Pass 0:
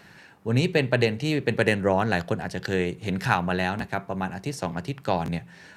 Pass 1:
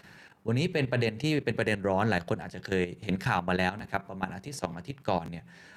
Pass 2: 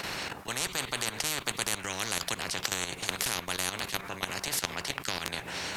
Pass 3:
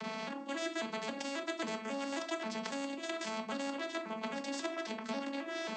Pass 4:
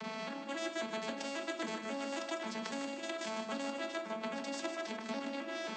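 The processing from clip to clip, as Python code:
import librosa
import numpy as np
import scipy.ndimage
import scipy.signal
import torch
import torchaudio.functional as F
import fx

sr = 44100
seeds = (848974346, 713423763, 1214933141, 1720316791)

y1 = fx.level_steps(x, sr, step_db=13)
y2 = fx.spectral_comp(y1, sr, ratio=10.0)
y2 = y2 * 10.0 ** (5.5 / 20.0)
y3 = fx.vocoder_arp(y2, sr, chord='major triad', root=57, every_ms=270)
y3 = fx.room_shoebox(y3, sr, seeds[0], volume_m3=210.0, walls='furnished', distance_m=0.97)
y3 = y3 * 10.0 ** (-5.0 / 20.0)
y4 = fx.echo_feedback(y3, sr, ms=153, feedback_pct=46, wet_db=-8.5)
y4 = y4 * 10.0 ** (-1.5 / 20.0)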